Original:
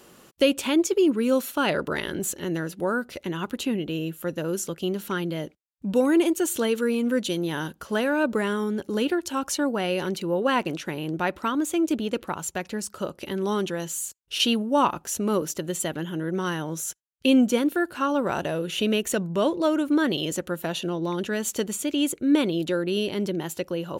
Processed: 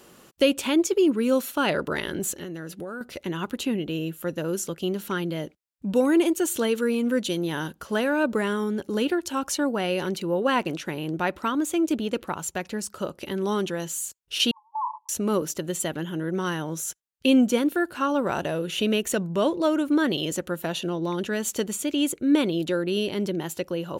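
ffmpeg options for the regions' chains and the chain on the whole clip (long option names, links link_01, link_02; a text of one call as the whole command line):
ffmpeg -i in.wav -filter_complex "[0:a]asettb=1/sr,asplit=3[link_01][link_02][link_03];[link_01]atrim=end=2.374[link_04];[link_02]atrim=start=2.37:end=3.01,asetpts=PTS-STARTPTS,afade=type=in:duration=0.004:curve=qsin,afade=type=out:start_time=0.636:duration=0.004:curve=qsin,acompressor=threshold=-30dB:ratio=10:attack=3.2:release=140:knee=1:detection=peak,bandreject=frequency=930:width=11[link_05];[link_03]atrim=start=3.006[link_06];[link_04][link_05]acrossfade=duration=0.004:curve1=hsin:curve2=qsin[link_07];[link_07][link_06]acrossfade=duration=0.004:curve1=qsin:curve2=hsin,asettb=1/sr,asplit=3[link_08][link_09][link_10];[link_08]atrim=end=14.514[link_11];[link_09]atrim=start=14.51:end=15.09,asetpts=PTS-STARTPTS,afade=type=in:duration=0.004:curve=qsin,afade=type=out:start_time=0.576:duration=0.004:curve=qsin,asuperpass=centerf=970:order=12:qfactor=3.9,acompressor=threshold=-28dB:ratio=2:attack=3.2:release=140:knee=1:detection=peak[link_12];[link_10]atrim=start=15.086[link_13];[link_11][link_12]acrossfade=duration=0.004:curve1=hsin:curve2=qsin[link_14];[link_14][link_13]acrossfade=duration=0.004:curve1=qsin:curve2=hsin" out.wav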